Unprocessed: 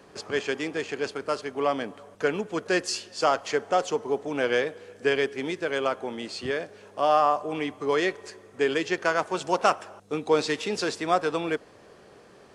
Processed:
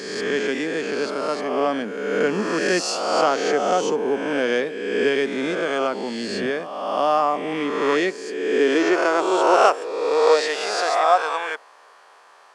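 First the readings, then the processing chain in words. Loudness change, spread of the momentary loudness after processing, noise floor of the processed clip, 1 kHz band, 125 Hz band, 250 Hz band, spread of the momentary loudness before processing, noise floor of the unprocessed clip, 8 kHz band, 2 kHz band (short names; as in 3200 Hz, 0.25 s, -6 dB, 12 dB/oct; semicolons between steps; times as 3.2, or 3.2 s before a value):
+6.0 dB, 8 LU, -50 dBFS, +6.0 dB, +1.0 dB, +7.0 dB, 9 LU, -53 dBFS, +5.5 dB, +5.5 dB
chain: spectral swells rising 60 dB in 1.44 s; high-pass sweep 210 Hz -> 960 Hz, 7.9–11.72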